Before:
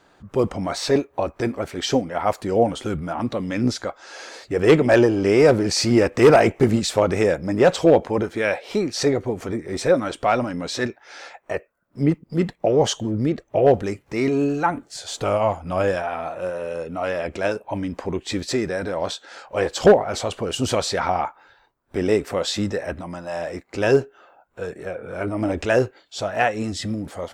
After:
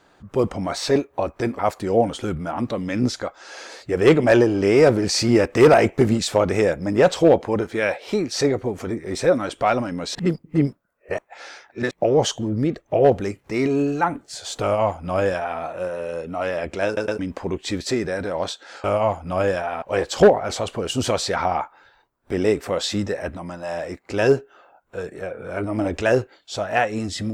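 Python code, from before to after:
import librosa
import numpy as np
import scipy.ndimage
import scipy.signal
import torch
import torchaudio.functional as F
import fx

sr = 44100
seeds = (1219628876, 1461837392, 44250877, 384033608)

y = fx.edit(x, sr, fx.cut(start_s=1.59, length_s=0.62),
    fx.reverse_span(start_s=10.77, length_s=1.76),
    fx.duplicate(start_s=15.24, length_s=0.98, to_s=19.46),
    fx.stutter_over(start_s=17.48, slice_s=0.11, count=3), tone=tone)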